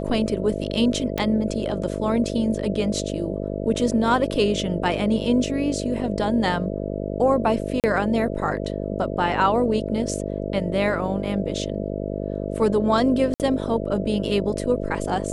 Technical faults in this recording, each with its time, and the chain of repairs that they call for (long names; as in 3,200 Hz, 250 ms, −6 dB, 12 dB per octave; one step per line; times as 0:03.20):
mains buzz 50 Hz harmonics 13 −28 dBFS
0:01.18: click −10 dBFS
0:07.80–0:07.84: drop-out 38 ms
0:13.34–0:13.40: drop-out 58 ms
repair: click removal
hum removal 50 Hz, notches 13
repair the gap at 0:07.80, 38 ms
repair the gap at 0:13.34, 58 ms